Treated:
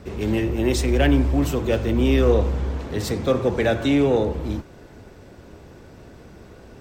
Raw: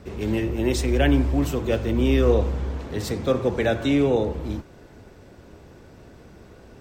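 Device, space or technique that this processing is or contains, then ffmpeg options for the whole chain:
parallel distortion: -filter_complex "[0:a]asplit=2[a][b];[b]asoftclip=type=hard:threshold=-21.5dB,volume=-9dB[c];[a][c]amix=inputs=2:normalize=0"

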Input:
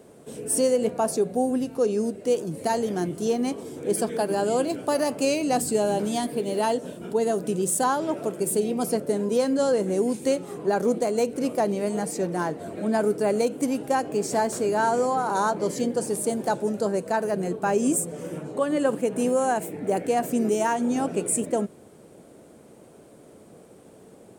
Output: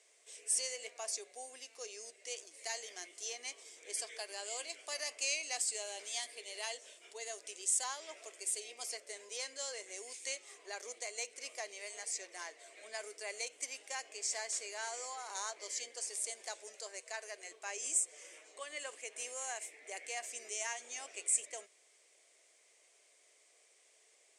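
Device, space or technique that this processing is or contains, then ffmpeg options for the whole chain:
phone speaker on a table: -filter_complex "[0:a]highpass=f=450:w=0.5412,highpass=f=450:w=1.3066,equalizer=f=520:t=q:w=4:g=-5,equalizer=f=870:t=q:w=4:g=-8,equalizer=f=1.4k:t=q:w=4:g=-9,equalizer=f=2.1k:t=q:w=4:g=9,equalizer=f=4.1k:t=q:w=4:g=-3,lowpass=f=7k:w=0.5412,lowpass=f=7k:w=1.3066,asettb=1/sr,asplit=3[a][b][c];[a]atrim=end=16.754[d];[b]atrim=start=16.75:end=17.52,asetpts=PTS-STARTPTS,afade=t=in:d=0.004:c=qsin,afade=t=out:st=0.766:d=0.004:c=qsin,highpass=300[e];[c]atrim=start=17.516[f];[d][e]acrossfade=d=0.004:c1=hsin:c2=qsin[g];[g][f]acrossfade=d=0.004:c1=qsin:c2=hsin,aderivative,volume=2.5dB"

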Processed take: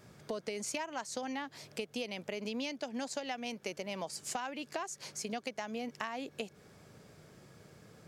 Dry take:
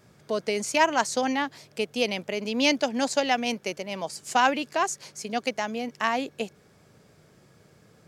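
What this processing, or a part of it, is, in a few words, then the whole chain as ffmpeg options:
serial compression, peaks first: -af "acompressor=threshold=-30dB:ratio=10,acompressor=threshold=-42dB:ratio=1.5"

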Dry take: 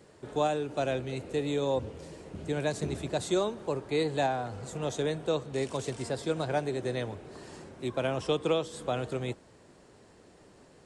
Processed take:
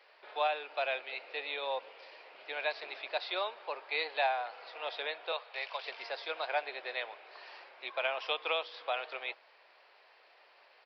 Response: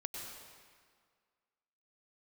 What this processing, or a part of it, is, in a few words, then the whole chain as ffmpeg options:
musical greeting card: -filter_complex "[0:a]asettb=1/sr,asplit=3[a][b][c];[a]atrim=end=5.324[d];[b]atrim=start=5.32:end=5.85,asetpts=PTS-STARTPTS,afade=t=in:d=0.004:c=qsin,afade=t=out:st=0.526:d=0.004:c=qsin,highpass=f=510:w=0.5412,highpass=f=510:w=1.3066[e];[c]atrim=start=5.846[f];[d][e]acrossfade=d=0.004:c1=hsin:c2=qsin[g];[g][f]acrossfade=d=0.004:c1=qsin:c2=hsin,aresample=11025,aresample=44100,highpass=f=660:w=0.5412,highpass=f=660:w=1.3066,equalizer=f=2.4k:t=o:w=0.56:g=8"

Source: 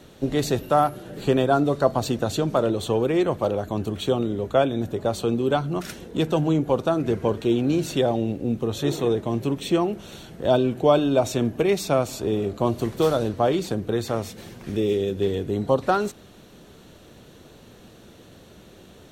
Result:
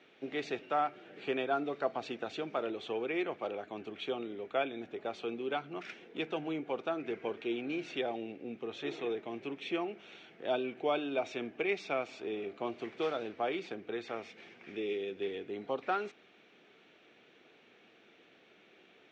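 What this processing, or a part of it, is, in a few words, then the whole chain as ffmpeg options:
phone earpiece: -af "highpass=410,equalizer=f=560:t=q:w=4:g=-7,equalizer=f=1k:t=q:w=4:g=-7,equalizer=f=2.3k:t=q:w=4:g=10,equalizer=f=4.2k:t=q:w=4:g=-8,lowpass=f=4.4k:w=0.5412,lowpass=f=4.4k:w=1.3066,volume=-8.5dB"

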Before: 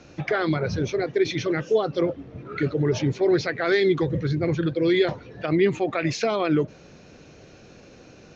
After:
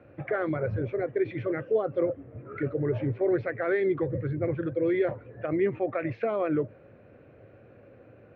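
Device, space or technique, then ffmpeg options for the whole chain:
bass cabinet: -af "highpass=63,equalizer=f=110:t=q:w=4:g=9,equalizer=f=170:t=q:w=4:g=-7,equalizer=f=550:t=q:w=4:g=7,equalizer=f=900:t=q:w=4:g=-4,lowpass=f=2.1k:w=0.5412,lowpass=f=2.1k:w=1.3066,volume=-6dB"

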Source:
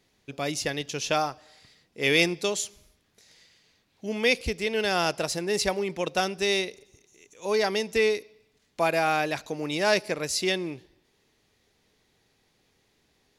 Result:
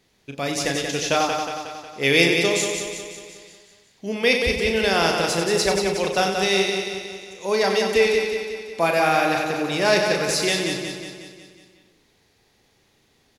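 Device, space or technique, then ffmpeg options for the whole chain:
slapback doubling: -filter_complex "[0:a]asplit=3[a][b][c];[b]adelay=36,volume=-8dB[d];[c]adelay=95,volume=-8dB[e];[a][d][e]amix=inputs=3:normalize=0,asettb=1/sr,asplit=3[f][g][h];[f]atrim=end=4.144[i];[g]atrim=start=4.14:end=4.55,asetpts=PTS-STARTPTS,afade=t=in:d=0.004:c=qsin,afade=t=out:st=0.406:d=0.004:c=qsin,bandreject=f=6.8k:w=5.7[j];[h]atrim=start=4.546[k];[i][j]acrossfade=d=0.004:c1=hsin:c2=qsin[l];[l][k]acrossfade=d=0.004:c1=qsin:c2=hsin,aecho=1:1:182|364|546|728|910|1092|1274:0.531|0.292|0.161|0.0883|0.0486|0.0267|0.0147,volume=3.5dB"

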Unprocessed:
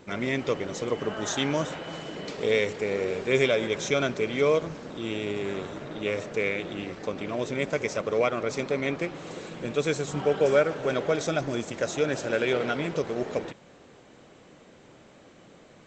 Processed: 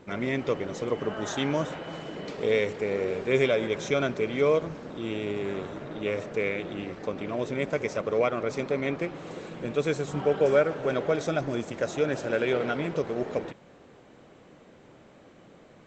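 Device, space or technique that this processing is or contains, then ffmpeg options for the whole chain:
behind a face mask: -af "highshelf=f=3.2k:g=-8"

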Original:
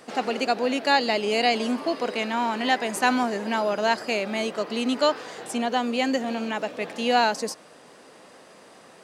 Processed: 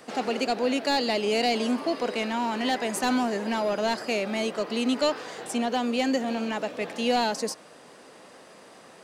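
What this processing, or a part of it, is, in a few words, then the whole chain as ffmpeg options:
one-band saturation: -filter_complex "[0:a]acrossover=split=560|3600[a][b][c];[b]asoftclip=type=tanh:threshold=-26.5dB[d];[a][d][c]amix=inputs=3:normalize=0"

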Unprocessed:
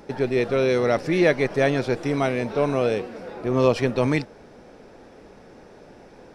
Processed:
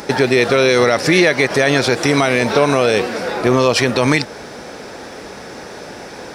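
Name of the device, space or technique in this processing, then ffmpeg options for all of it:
mastering chain: -af "highpass=54,equalizer=f=2.7k:t=o:w=0.62:g=-3.5,acompressor=threshold=-23dB:ratio=2.5,tiltshelf=f=1.1k:g=-6.5,alimiter=level_in=19dB:limit=-1dB:release=50:level=0:latency=1,volume=-1dB"

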